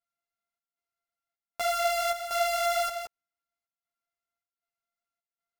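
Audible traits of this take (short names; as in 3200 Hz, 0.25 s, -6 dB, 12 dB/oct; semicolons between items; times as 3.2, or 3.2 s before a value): a buzz of ramps at a fixed pitch in blocks of 64 samples; chopped level 1.3 Hz, depth 65%, duty 75%; a shimmering, thickened sound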